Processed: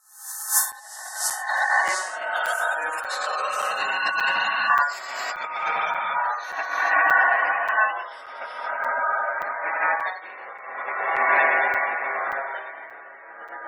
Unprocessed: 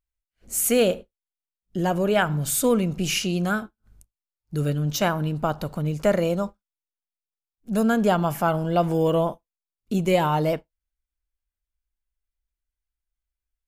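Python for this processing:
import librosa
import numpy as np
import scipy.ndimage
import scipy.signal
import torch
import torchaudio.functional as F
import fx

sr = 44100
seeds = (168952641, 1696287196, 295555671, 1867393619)

y = fx.spec_swells(x, sr, rise_s=0.62)
y = fx.echo_feedback(y, sr, ms=445, feedback_pct=30, wet_db=-24)
y = y * np.sin(2.0 * np.pi * 1300.0 * np.arange(len(y)) / sr)
y = fx.auto_swell(y, sr, attack_ms=343.0)
y = fx.rev_plate(y, sr, seeds[0], rt60_s=3.8, hf_ratio=0.9, predelay_ms=0, drr_db=-8.5)
y = fx.over_compress(y, sr, threshold_db=-29.0, ratio=-0.5)
y = fx.spec_gate(y, sr, threshold_db=-20, keep='strong')
y = fx.echo_pitch(y, sr, ms=580, semitones=-3, count=2, db_per_echo=-6.0)
y = scipy.signal.sosfilt(scipy.signal.butter(2, 620.0, 'highpass', fs=sr, output='sos'), y)
y = fx.buffer_crackle(y, sr, first_s=0.72, period_s=0.58, block=256, kind='zero')
y = fx.band_squash(y, sr, depth_pct=100, at=(1.87, 4.7))
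y = y * librosa.db_to_amplitude(4.0)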